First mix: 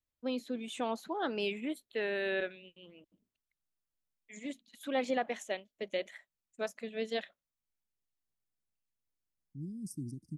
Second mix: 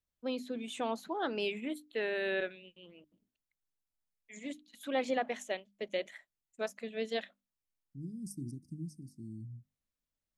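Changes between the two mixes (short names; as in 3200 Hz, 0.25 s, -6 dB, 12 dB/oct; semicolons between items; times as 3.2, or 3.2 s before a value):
second voice: entry -1.60 s; master: add notches 50/100/150/200/250/300 Hz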